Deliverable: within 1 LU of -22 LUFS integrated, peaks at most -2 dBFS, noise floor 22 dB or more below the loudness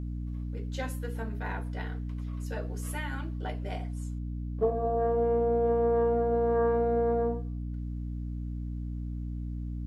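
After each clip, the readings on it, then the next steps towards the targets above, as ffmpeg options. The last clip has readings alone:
hum 60 Hz; highest harmonic 300 Hz; hum level -32 dBFS; loudness -31.0 LUFS; peak level -16.0 dBFS; loudness target -22.0 LUFS
-> -af "bandreject=f=60:t=h:w=6,bandreject=f=120:t=h:w=6,bandreject=f=180:t=h:w=6,bandreject=f=240:t=h:w=6,bandreject=f=300:t=h:w=6"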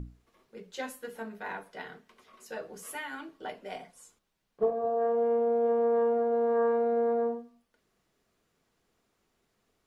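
hum not found; loudness -29.5 LUFS; peak level -16.5 dBFS; loudness target -22.0 LUFS
-> -af "volume=2.37"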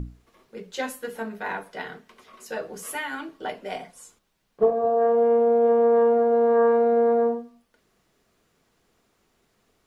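loudness -22.5 LUFS; peak level -9.0 dBFS; noise floor -70 dBFS

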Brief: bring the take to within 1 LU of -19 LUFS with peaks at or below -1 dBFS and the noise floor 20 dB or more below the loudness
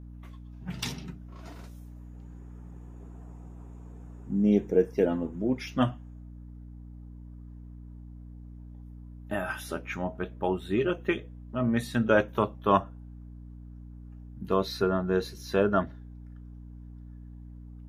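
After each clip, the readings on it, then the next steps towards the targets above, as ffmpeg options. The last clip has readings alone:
hum 60 Hz; highest harmonic 300 Hz; hum level -42 dBFS; loudness -28.5 LUFS; peak level -8.0 dBFS; loudness target -19.0 LUFS
-> -af "bandreject=f=60:t=h:w=4,bandreject=f=120:t=h:w=4,bandreject=f=180:t=h:w=4,bandreject=f=240:t=h:w=4,bandreject=f=300:t=h:w=4"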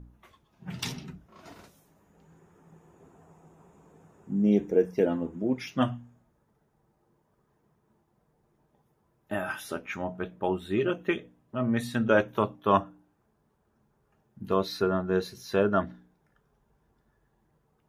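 hum not found; loudness -28.5 LUFS; peak level -8.0 dBFS; loudness target -19.0 LUFS
-> -af "volume=2.99,alimiter=limit=0.891:level=0:latency=1"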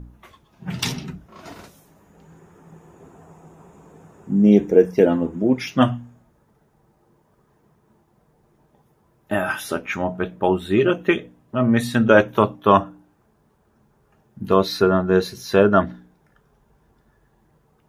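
loudness -19.5 LUFS; peak level -1.0 dBFS; noise floor -62 dBFS

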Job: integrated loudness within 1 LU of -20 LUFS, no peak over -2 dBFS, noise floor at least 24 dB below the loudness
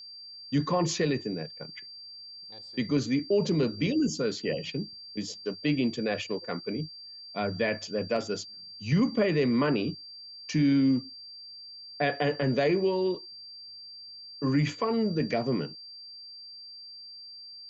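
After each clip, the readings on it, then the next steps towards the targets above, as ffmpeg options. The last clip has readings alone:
steady tone 4.7 kHz; tone level -43 dBFS; loudness -29.0 LUFS; peak level -15.5 dBFS; loudness target -20.0 LUFS
-> -af "bandreject=f=4700:w=30"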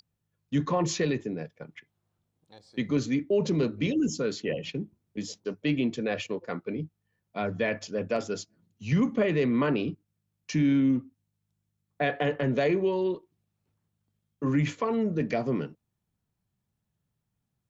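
steady tone not found; loudness -29.0 LUFS; peak level -16.0 dBFS; loudness target -20.0 LUFS
-> -af "volume=2.82"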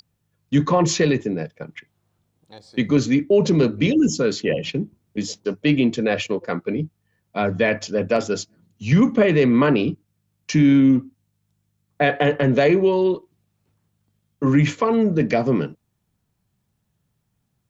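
loudness -20.0 LUFS; peak level -7.0 dBFS; noise floor -72 dBFS

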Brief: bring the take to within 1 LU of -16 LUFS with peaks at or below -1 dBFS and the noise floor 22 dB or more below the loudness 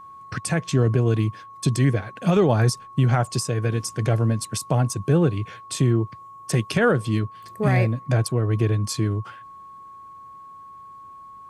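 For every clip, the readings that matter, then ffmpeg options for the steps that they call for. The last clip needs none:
steady tone 1.1 kHz; tone level -40 dBFS; loudness -22.5 LUFS; peak level -9.5 dBFS; loudness target -16.0 LUFS
-> -af "bandreject=f=1100:w=30"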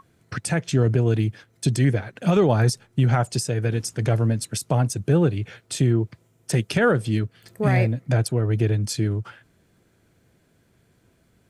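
steady tone not found; loudness -22.5 LUFS; peak level -9.5 dBFS; loudness target -16.0 LUFS
-> -af "volume=2.11"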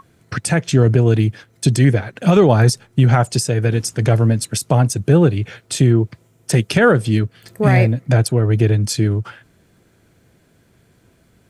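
loudness -16.0 LUFS; peak level -3.0 dBFS; noise floor -56 dBFS

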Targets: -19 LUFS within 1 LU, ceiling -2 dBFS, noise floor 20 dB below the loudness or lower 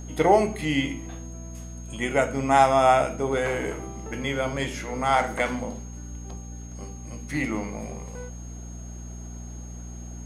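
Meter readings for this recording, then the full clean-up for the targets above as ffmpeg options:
hum 60 Hz; highest harmonic 240 Hz; hum level -36 dBFS; steady tone 6.5 kHz; tone level -47 dBFS; loudness -24.5 LUFS; peak level -5.0 dBFS; loudness target -19.0 LUFS
-> -af "bandreject=f=60:t=h:w=4,bandreject=f=120:t=h:w=4,bandreject=f=180:t=h:w=4,bandreject=f=240:t=h:w=4"
-af "bandreject=f=6500:w=30"
-af "volume=1.88,alimiter=limit=0.794:level=0:latency=1"

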